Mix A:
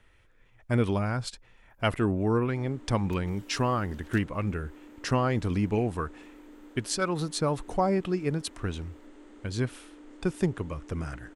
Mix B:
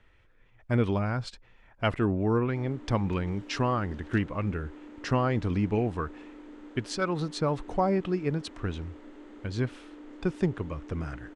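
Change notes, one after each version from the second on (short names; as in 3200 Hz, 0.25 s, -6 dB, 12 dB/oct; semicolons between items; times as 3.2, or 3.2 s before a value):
first sound +3.5 dB; master: add air absorption 98 m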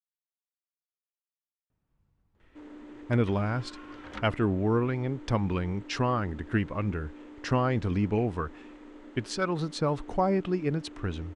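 speech: entry +2.40 s; second sound: remove differentiator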